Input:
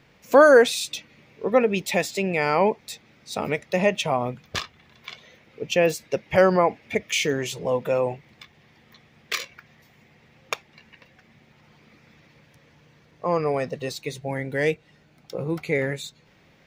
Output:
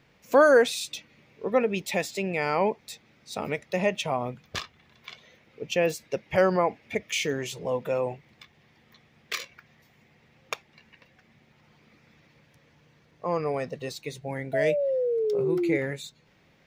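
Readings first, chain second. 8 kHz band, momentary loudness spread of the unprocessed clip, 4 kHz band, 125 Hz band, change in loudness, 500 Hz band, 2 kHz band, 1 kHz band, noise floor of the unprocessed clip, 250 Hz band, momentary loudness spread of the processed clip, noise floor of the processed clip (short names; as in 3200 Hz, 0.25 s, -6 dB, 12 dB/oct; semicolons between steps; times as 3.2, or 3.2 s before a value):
-4.5 dB, 17 LU, -4.5 dB, -4.5 dB, -4.0 dB, -3.5 dB, -4.5 dB, -4.5 dB, -58 dBFS, -3.5 dB, 16 LU, -62 dBFS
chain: painted sound fall, 14.53–15.77, 320–670 Hz -21 dBFS; gain -4.5 dB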